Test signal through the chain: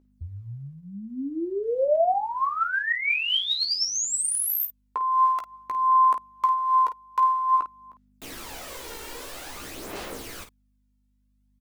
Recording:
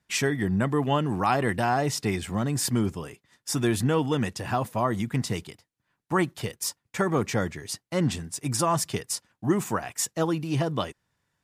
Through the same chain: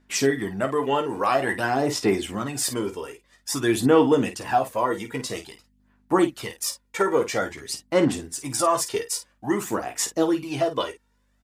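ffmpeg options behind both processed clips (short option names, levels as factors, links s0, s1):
-af "aeval=exprs='val(0)+0.00112*(sin(2*PI*50*n/s)+sin(2*PI*2*50*n/s)/2+sin(2*PI*3*50*n/s)/3+sin(2*PI*4*50*n/s)/4+sin(2*PI*5*50*n/s)/5)':c=same,aphaser=in_gain=1:out_gain=1:delay=2.2:decay=0.54:speed=0.5:type=sinusoidal,lowshelf=f=220:t=q:w=1.5:g=-9.5,aecho=1:1:15|51:0.447|0.299"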